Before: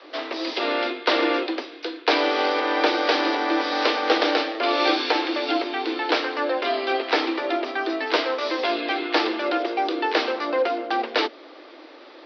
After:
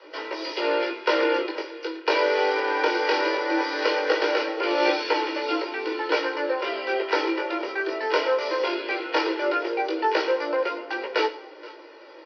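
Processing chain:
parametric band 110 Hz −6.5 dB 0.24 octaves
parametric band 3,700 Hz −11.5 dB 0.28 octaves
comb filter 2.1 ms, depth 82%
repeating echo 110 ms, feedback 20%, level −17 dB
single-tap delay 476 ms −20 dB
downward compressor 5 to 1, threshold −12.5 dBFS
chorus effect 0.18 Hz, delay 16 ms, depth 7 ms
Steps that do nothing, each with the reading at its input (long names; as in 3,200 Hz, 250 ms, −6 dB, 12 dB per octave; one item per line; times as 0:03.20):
parametric band 110 Hz: nothing at its input below 210 Hz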